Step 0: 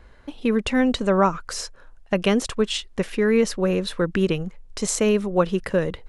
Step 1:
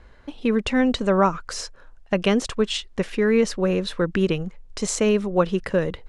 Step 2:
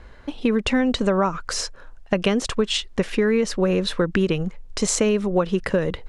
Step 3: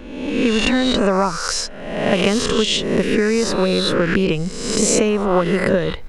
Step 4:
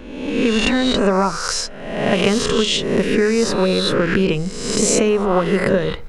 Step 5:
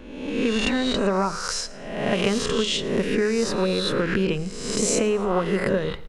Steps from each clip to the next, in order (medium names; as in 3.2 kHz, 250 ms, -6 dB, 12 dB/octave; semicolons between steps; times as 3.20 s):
low-pass 8.5 kHz 12 dB/octave
compression, threshold -21 dBFS, peak gain reduction 8.5 dB; trim +5 dB
reverse spectral sustain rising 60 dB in 0.99 s; trim +1.5 dB
reverberation RT60 0.45 s, pre-delay 3 ms, DRR 13 dB
feedback delay 111 ms, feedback 43%, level -21 dB; trim -6 dB